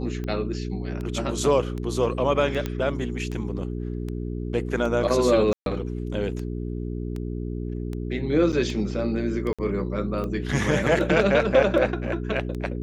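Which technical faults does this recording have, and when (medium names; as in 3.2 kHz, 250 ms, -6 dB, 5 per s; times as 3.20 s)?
hum 60 Hz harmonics 7 -30 dBFS
tick 78 rpm -21 dBFS
2.66 s: pop -14 dBFS
5.53–5.66 s: dropout 132 ms
8.52–8.53 s: dropout 7.3 ms
9.53–9.59 s: dropout 56 ms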